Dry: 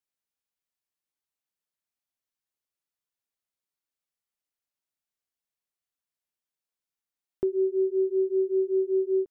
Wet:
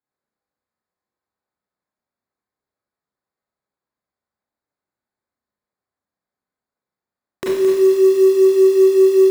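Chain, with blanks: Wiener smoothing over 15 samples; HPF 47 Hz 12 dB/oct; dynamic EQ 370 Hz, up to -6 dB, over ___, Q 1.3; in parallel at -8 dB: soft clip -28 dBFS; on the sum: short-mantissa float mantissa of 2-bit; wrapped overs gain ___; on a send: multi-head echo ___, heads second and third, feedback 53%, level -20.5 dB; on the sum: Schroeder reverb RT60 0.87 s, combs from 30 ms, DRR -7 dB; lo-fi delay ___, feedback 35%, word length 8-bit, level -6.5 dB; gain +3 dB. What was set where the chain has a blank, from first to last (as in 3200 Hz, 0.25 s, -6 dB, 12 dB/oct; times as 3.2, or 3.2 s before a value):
-38 dBFS, 21.5 dB, 0.342 s, 0.217 s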